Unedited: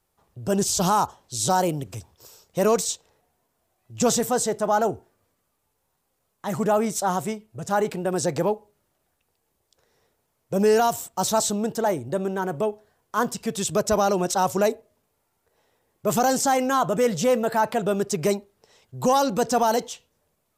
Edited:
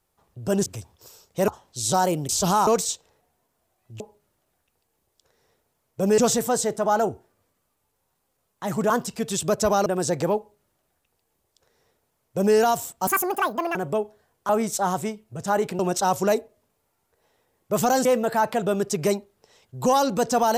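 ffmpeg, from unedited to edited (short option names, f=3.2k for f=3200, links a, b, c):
-filter_complex "[0:a]asplit=14[a][b][c][d][e][f][g][h][i][j][k][l][m][n];[a]atrim=end=0.662[o];[b]atrim=start=1.848:end=2.672[p];[c]atrim=start=1.038:end=1.852[q];[d]atrim=start=0.658:end=1.042[r];[e]atrim=start=2.668:end=4.002[s];[f]atrim=start=8.528:end=10.712[t];[g]atrim=start=3.998:end=6.722[u];[h]atrim=start=13.168:end=14.132[v];[i]atrim=start=8.018:end=11.234[w];[j]atrim=start=11.23:end=12.43,asetpts=PTS-STARTPTS,asetrate=77616,aresample=44100,atrim=end_sample=30068,asetpts=PTS-STARTPTS[x];[k]atrim=start=12.426:end=13.172[y];[l]atrim=start=6.718:end=8.022[z];[m]atrim=start=14.128:end=16.392[aa];[n]atrim=start=17.248[ab];[o][p]acrossfade=d=0.004:c1=hsin:c2=hsin[ac];[ac][q]acrossfade=d=0.004:c1=hsin:c2=hsin[ad];[ad][r]acrossfade=d=0.004:c1=hsin:c2=hsin[ae];[ae][s]acrossfade=d=0.004:c1=hsin:c2=hsin[af];[af][t]acrossfade=d=0.004:c1=hsin:c2=hsin[ag];[ag][u]acrossfade=d=0.004:c1=hsin:c2=hsin[ah];[ah][v]acrossfade=d=0.004:c1=hsin:c2=hsin[ai];[ai][w]acrossfade=d=0.004:c1=hsin:c2=hsin[aj];[aj][x]acrossfade=d=0.004:c1=hsin:c2=hsin[ak];[ak][y]acrossfade=d=0.004:c1=hsin:c2=hsin[al];[al][z]acrossfade=d=0.004:c1=hsin:c2=hsin[am];[am][aa]acrossfade=d=0.004:c1=hsin:c2=hsin[an];[an][ab]acrossfade=d=0.004:c1=hsin:c2=hsin"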